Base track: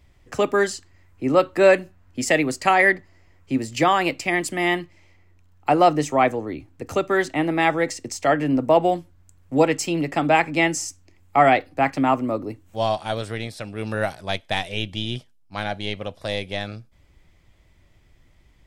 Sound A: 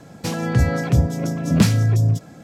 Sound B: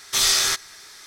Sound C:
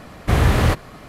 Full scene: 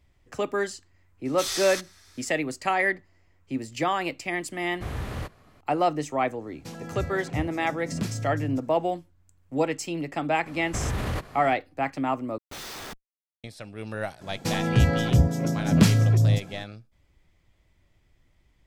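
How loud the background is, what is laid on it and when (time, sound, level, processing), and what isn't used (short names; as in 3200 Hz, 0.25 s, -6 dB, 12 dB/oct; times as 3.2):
base track -7.5 dB
1.25 add B -12 dB
4.53 add C -17 dB
6.41 add A -15 dB
10.46 add C -6 dB + limiter -14.5 dBFS
12.38 replace with B -15 dB + Schmitt trigger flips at -19.5 dBFS
14.21 add A -2.5 dB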